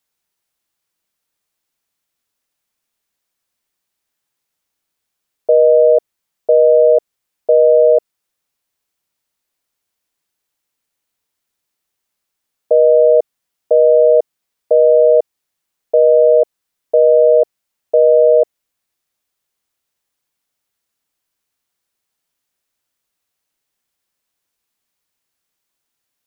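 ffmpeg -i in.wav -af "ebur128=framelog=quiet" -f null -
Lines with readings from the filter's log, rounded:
Integrated loudness:
  I:         -11.8 LUFS
  Threshold: -22.1 LUFS
Loudness range:
  LRA:         5.9 LU
  Threshold: -34.6 LUFS
  LRA low:   -18.4 LUFS
  LRA high:  -12.6 LUFS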